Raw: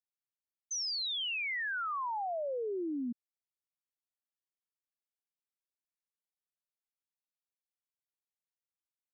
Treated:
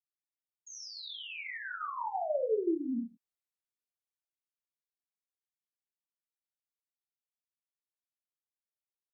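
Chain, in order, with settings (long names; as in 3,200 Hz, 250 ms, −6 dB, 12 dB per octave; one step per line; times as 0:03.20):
source passing by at 0:02.56, 21 m/s, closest 7.5 metres
reverb whose tail is shaped and stops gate 190 ms falling, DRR −2.5 dB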